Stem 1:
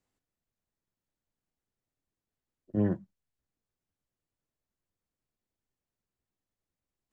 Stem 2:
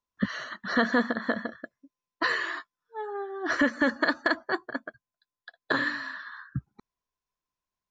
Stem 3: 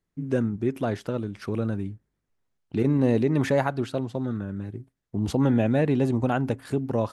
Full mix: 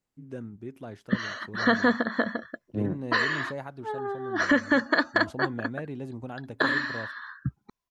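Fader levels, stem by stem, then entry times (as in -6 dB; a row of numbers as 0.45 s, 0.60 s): -2.0 dB, +2.0 dB, -14.0 dB; 0.00 s, 0.90 s, 0.00 s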